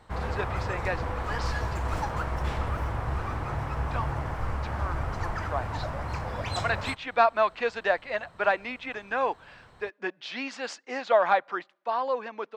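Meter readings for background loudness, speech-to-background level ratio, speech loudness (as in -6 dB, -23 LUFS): -32.5 LUFS, 3.0 dB, -29.5 LUFS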